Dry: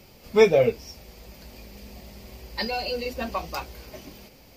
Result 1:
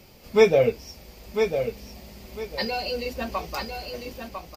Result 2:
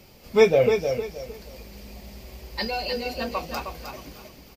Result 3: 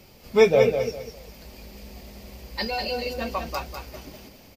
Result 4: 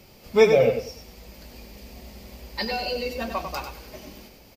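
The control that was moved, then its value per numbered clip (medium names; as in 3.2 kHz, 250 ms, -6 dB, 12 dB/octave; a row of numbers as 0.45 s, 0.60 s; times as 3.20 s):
feedback delay, time: 1000 ms, 311 ms, 199 ms, 96 ms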